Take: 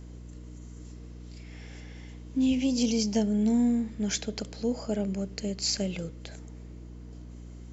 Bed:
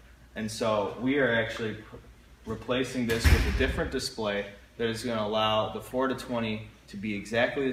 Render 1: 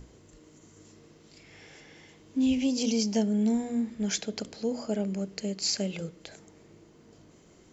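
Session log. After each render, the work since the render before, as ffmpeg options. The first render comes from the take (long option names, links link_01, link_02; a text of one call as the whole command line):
ffmpeg -i in.wav -af "bandreject=frequency=60:width_type=h:width=6,bandreject=frequency=120:width_type=h:width=6,bandreject=frequency=180:width_type=h:width=6,bandreject=frequency=240:width_type=h:width=6,bandreject=frequency=300:width_type=h:width=6,bandreject=frequency=360:width_type=h:width=6" out.wav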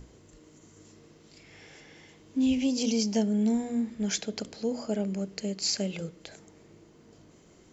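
ffmpeg -i in.wav -af anull out.wav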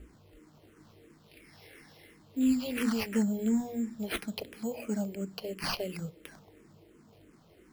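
ffmpeg -i in.wav -filter_complex "[0:a]acrusher=samples=6:mix=1:aa=0.000001,asplit=2[link_01][link_02];[link_02]afreqshift=-2.9[link_03];[link_01][link_03]amix=inputs=2:normalize=1" out.wav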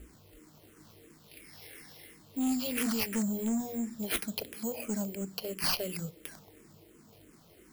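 ffmpeg -i in.wav -af "asoftclip=type=tanh:threshold=-26dB,crystalizer=i=2:c=0" out.wav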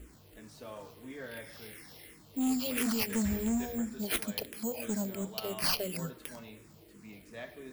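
ffmpeg -i in.wav -i bed.wav -filter_complex "[1:a]volume=-19dB[link_01];[0:a][link_01]amix=inputs=2:normalize=0" out.wav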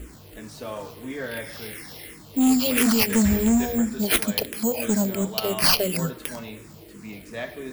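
ffmpeg -i in.wav -af "volume=11.5dB" out.wav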